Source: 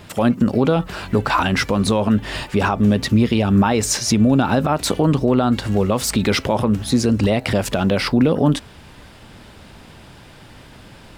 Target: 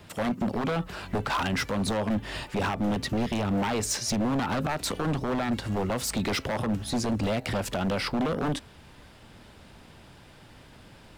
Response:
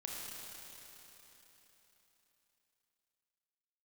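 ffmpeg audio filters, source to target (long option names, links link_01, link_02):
-filter_complex "[0:a]acrossover=split=270|750|2300[link_01][link_02][link_03][link_04];[link_02]crystalizer=i=6:c=0[link_05];[link_01][link_05][link_03][link_04]amix=inputs=4:normalize=0,aeval=exprs='0.237*(abs(mod(val(0)/0.237+3,4)-2)-1)':channel_layout=same,volume=-8.5dB"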